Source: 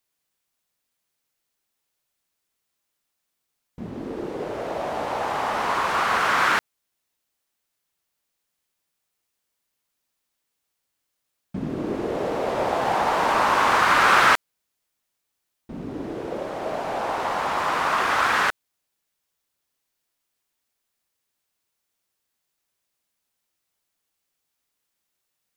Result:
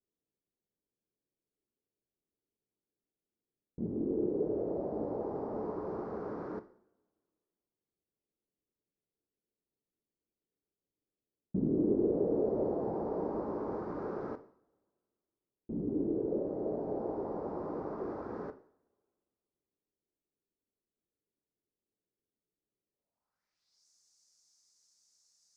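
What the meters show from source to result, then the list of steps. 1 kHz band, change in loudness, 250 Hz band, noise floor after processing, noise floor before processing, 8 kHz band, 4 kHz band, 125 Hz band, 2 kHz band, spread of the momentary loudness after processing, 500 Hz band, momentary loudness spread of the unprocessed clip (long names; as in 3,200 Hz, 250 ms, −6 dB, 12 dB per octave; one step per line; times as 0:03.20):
−23.5 dB, −13.0 dB, −1.5 dB, below −85 dBFS, −79 dBFS, below −30 dB, below −40 dB, −5.0 dB, below −35 dB, 11 LU, −6.0 dB, 16 LU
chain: high shelf with overshoot 3,900 Hz +9.5 dB, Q 3
downward compressor 3 to 1, threshold −22 dBFS, peak gain reduction 8 dB
coupled-rooms reverb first 0.56 s, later 2.1 s, from −25 dB, DRR 9 dB
low-pass filter sweep 380 Hz → 6,600 Hz, 0:22.91–0:23.87
level −6 dB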